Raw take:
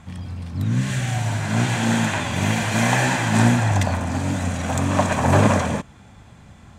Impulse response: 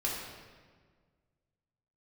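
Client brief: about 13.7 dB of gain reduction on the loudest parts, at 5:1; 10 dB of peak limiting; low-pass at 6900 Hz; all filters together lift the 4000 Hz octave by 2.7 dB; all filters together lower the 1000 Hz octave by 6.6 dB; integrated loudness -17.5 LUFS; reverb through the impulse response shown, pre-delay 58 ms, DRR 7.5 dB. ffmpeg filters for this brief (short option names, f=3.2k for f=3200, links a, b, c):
-filter_complex "[0:a]lowpass=6.9k,equalizer=f=1k:t=o:g=-9,equalizer=f=4k:t=o:g=4.5,acompressor=threshold=-28dB:ratio=5,alimiter=level_in=3dB:limit=-24dB:level=0:latency=1,volume=-3dB,asplit=2[a][b];[1:a]atrim=start_sample=2205,adelay=58[c];[b][c]afir=irnorm=-1:irlink=0,volume=-13dB[d];[a][d]amix=inputs=2:normalize=0,volume=17dB"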